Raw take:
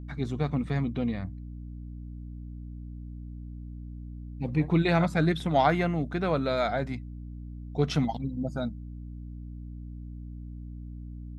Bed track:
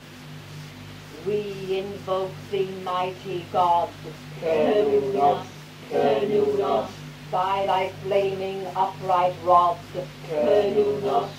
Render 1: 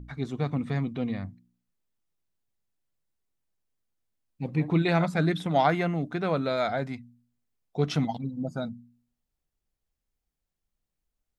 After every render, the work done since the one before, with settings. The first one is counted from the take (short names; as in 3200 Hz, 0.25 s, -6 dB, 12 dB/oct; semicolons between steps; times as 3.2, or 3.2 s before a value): de-hum 60 Hz, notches 5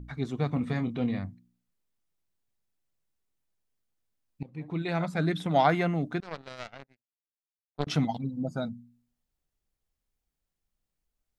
0.53–1.19 doubler 25 ms -8 dB; 4.43–5.59 fade in, from -19.5 dB; 6.2–7.87 power-law curve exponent 3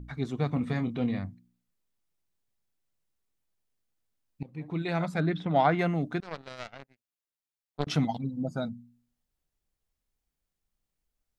5.2–5.79 air absorption 200 m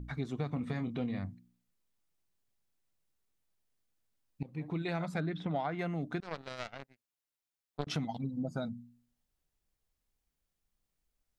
compressor 6:1, threshold -32 dBFS, peak gain reduction 13 dB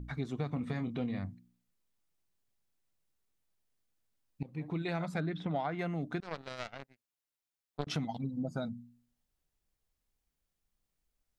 nothing audible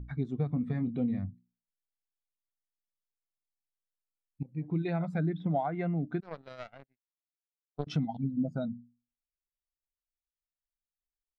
spectral expander 1.5:1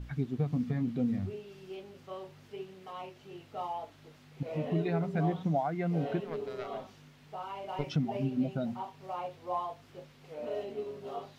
add bed track -17.5 dB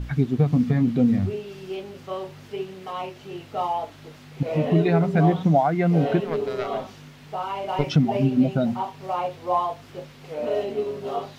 gain +11.5 dB